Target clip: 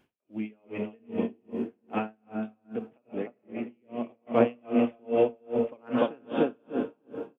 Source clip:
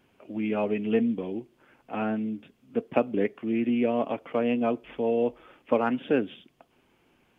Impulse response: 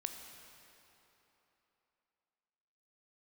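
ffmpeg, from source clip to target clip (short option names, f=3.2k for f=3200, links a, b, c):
-filter_complex "[0:a]dynaudnorm=f=590:g=5:m=11.5dB,asplit=2[a][b];[b]adelay=297,lowpass=f=940:p=1,volume=-3dB,asplit=2[c][d];[d]adelay=297,lowpass=f=940:p=1,volume=0.51,asplit=2[e][f];[f]adelay=297,lowpass=f=940:p=1,volume=0.51,asplit=2[g][h];[h]adelay=297,lowpass=f=940:p=1,volume=0.51,asplit=2[i][j];[j]adelay=297,lowpass=f=940:p=1,volume=0.51,asplit=2[k][l];[l]adelay=297,lowpass=f=940:p=1,volume=0.51,asplit=2[m][n];[n]adelay=297,lowpass=f=940:p=1,volume=0.51[o];[a][c][e][g][i][k][m][o]amix=inputs=8:normalize=0[p];[1:a]atrim=start_sample=2205[q];[p][q]afir=irnorm=-1:irlink=0,asettb=1/sr,asplit=3[r][s][t];[r]atrim=end=1.984[u];[s]atrim=start=1.98:end=4.27,asetpts=PTS-STARTPTS,afade=t=in:d=0.004:c=qsin,afade=t=out:st=2.286:d=0.004:c=qsin,acompressor=threshold=-27dB:ratio=10[v];[t]atrim=start=4.266[w];[u][v]acrossfade=d=0.004:c1=hsin:c2=qsin[x];[x][w]acrossfade=d=0.004:c1=qsin:c2=hsin,aeval=exprs='val(0)*pow(10,-39*(0.5-0.5*cos(2*PI*2.5*n/s))/20)':c=same"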